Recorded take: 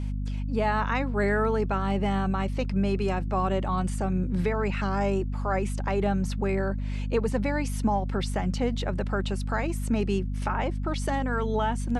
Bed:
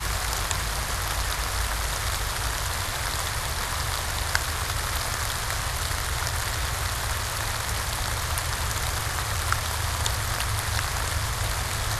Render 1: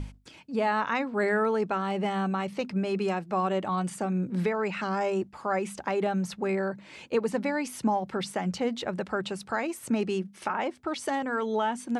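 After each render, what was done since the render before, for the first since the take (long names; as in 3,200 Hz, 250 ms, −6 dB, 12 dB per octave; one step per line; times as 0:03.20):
mains-hum notches 50/100/150/200/250 Hz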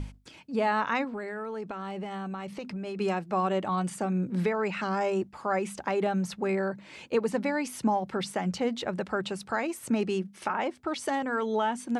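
0:01.04–0:02.99: downward compressor 10 to 1, threshold −32 dBFS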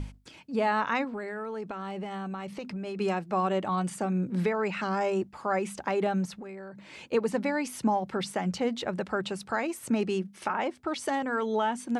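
0:06.25–0:06.94: downward compressor 16 to 1, threshold −38 dBFS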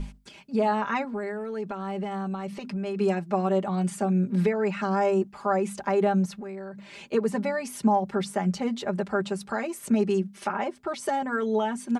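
comb filter 5 ms, depth 83%
dynamic equaliser 3,200 Hz, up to −5 dB, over −42 dBFS, Q 0.79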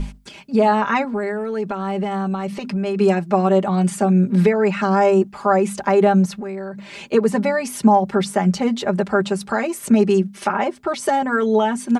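level +8.5 dB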